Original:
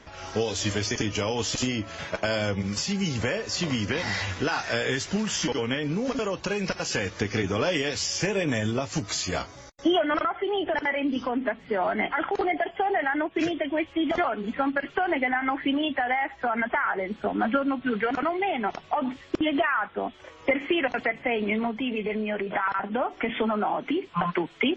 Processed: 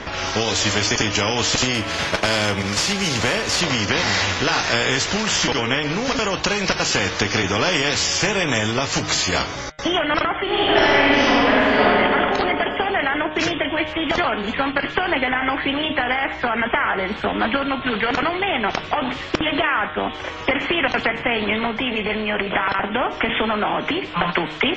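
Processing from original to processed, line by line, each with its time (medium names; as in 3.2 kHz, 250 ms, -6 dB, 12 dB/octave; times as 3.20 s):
1.74–3.61 s: CVSD coder 64 kbps
10.45–11.83 s: reverb throw, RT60 2.3 s, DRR -10.5 dB
whole clip: low-pass 5 kHz 12 dB/octave; de-hum 153.9 Hz, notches 24; spectrum-flattening compressor 2:1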